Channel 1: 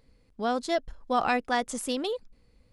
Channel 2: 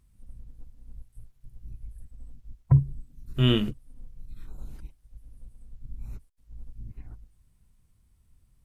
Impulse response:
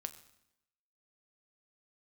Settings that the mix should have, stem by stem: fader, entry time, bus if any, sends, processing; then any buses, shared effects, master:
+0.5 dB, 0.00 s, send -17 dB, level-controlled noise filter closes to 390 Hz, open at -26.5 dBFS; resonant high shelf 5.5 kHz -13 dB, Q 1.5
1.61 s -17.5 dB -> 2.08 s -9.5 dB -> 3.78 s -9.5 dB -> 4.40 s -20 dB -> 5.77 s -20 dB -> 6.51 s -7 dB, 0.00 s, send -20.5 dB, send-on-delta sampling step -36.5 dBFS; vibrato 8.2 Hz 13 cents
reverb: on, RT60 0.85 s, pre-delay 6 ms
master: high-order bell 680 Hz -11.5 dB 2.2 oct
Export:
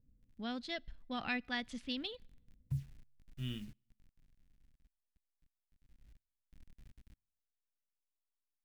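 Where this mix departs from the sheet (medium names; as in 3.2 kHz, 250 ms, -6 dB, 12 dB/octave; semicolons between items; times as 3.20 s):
stem 1 +0.5 dB -> -8.0 dB; stem 2 -17.5 dB -> -27.5 dB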